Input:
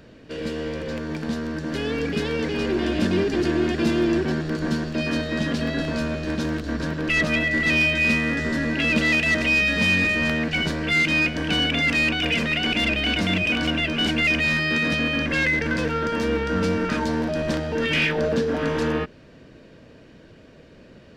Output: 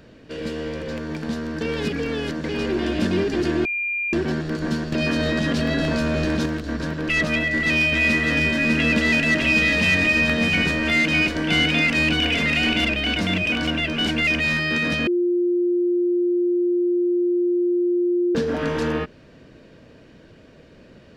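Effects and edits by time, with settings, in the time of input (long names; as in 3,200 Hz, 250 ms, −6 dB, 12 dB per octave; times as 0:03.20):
0:01.61–0:02.44: reverse
0:03.65–0:04.13: beep over 2,400 Hz −22 dBFS
0:04.92–0:06.46: envelope flattener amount 100%
0:07.32–0:12.85: single-tap delay 602 ms −3 dB
0:15.07–0:18.35: beep over 352 Hz −17 dBFS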